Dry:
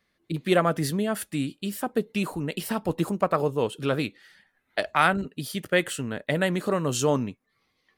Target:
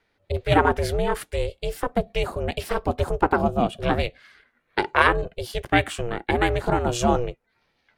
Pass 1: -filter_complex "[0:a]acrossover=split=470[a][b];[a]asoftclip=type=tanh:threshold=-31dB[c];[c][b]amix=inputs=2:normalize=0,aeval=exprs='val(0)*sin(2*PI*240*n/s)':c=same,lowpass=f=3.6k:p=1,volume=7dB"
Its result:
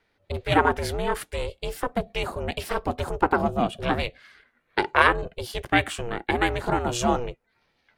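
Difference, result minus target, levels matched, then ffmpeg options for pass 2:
soft clip: distortion +12 dB
-filter_complex "[0:a]acrossover=split=470[a][b];[a]asoftclip=type=tanh:threshold=-19.5dB[c];[c][b]amix=inputs=2:normalize=0,aeval=exprs='val(0)*sin(2*PI*240*n/s)':c=same,lowpass=f=3.6k:p=1,volume=7dB"

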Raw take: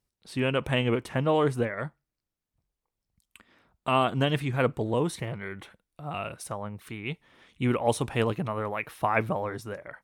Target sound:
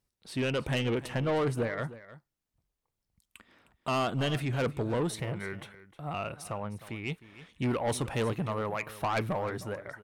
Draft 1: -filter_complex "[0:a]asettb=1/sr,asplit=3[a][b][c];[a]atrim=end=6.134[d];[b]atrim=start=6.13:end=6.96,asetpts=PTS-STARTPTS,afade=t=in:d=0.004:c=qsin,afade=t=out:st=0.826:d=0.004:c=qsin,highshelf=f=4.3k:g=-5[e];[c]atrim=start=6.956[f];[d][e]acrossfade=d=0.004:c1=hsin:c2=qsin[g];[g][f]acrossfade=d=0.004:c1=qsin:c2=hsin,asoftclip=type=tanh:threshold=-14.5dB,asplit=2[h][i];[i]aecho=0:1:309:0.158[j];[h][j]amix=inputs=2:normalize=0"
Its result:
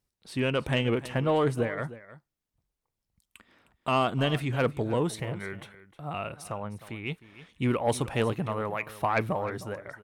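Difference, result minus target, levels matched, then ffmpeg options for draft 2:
soft clip: distortion -11 dB
-filter_complex "[0:a]asettb=1/sr,asplit=3[a][b][c];[a]atrim=end=6.134[d];[b]atrim=start=6.13:end=6.96,asetpts=PTS-STARTPTS,afade=t=in:d=0.004:c=qsin,afade=t=out:st=0.826:d=0.004:c=qsin,highshelf=f=4.3k:g=-5[e];[c]atrim=start=6.956[f];[d][e]acrossfade=d=0.004:c1=hsin:c2=qsin[g];[g][f]acrossfade=d=0.004:c1=qsin:c2=hsin,asoftclip=type=tanh:threshold=-24dB,asplit=2[h][i];[i]aecho=0:1:309:0.158[j];[h][j]amix=inputs=2:normalize=0"

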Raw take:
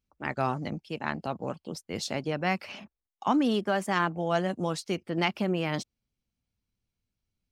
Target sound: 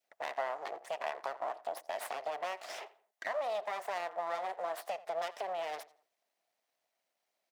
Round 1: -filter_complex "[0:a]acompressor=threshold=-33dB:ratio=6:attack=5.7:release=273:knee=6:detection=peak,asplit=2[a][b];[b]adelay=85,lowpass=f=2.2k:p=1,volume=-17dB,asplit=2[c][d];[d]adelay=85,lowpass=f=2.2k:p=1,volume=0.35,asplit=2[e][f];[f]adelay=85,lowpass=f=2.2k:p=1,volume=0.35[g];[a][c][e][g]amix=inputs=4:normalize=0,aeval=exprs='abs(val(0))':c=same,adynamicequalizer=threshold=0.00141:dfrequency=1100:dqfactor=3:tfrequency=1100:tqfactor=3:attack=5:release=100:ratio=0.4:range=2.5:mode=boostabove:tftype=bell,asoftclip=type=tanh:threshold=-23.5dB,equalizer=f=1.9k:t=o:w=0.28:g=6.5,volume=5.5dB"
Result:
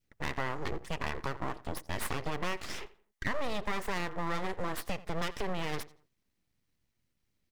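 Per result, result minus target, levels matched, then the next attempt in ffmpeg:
compressor: peak gain reduction -7.5 dB; 500 Hz band -3.5 dB
-filter_complex "[0:a]acompressor=threshold=-42dB:ratio=6:attack=5.7:release=273:knee=6:detection=peak,asplit=2[a][b];[b]adelay=85,lowpass=f=2.2k:p=1,volume=-17dB,asplit=2[c][d];[d]adelay=85,lowpass=f=2.2k:p=1,volume=0.35,asplit=2[e][f];[f]adelay=85,lowpass=f=2.2k:p=1,volume=0.35[g];[a][c][e][g]amix=inputs=4:normalize=0,aeval=exprs='abs(val(0))':c=same,adynamicequalizer=threshold=0.00141:dfrequency=1100:dqfactor=3:tfrequency=1100:tqfactor=3:attack=5:release=100:ratio=0.4:range=2.5:mode=boostabove:tftype=bell,asoftclip=type=tanh:threshold=-23.5dB,equalizer=f=1.9k:t=o:w=0.28:g=6.5,volume=5.5dB"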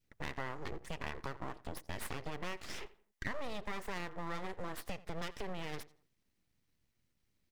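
500 Hz band -3.5 dB
-filter_complex "[0:a]acompressor=threshold=-42dB:ratio=6:attack=5.7:release=273:knee=6:detection=peak,asplit=2[a][b];[b]adelay=85,lowpass=f=2.2k:p=1,volume=-17dB,asplit=2[c][d];[d]adelay=85,lowpass=f=2.2k:p=1,volume=0.35,asplit=2[e][f];[f]adelay=85,lowpass=f=2.2k:p=1,volume=0.35[g];[a][c][e][g]amix=inputs=4:normalize=0,aeval=exprs='abs(val(0))':c=same,adynamicequalizer=threshold=0.00141:dfrequency=1100:dqfactor=3:tfrequency=1100:tqfactor=3:attack=5:release=100:ratio=0.4:range=2.5:mode=boostabove:tftype=bell,asoftclip=type=tanh:threshold=-23.5dB,highpass=f=670:t=q:w=5.8,equalizer=f=1.9k:t=o:w=0.28:g=6.5,volume=5.5dB"

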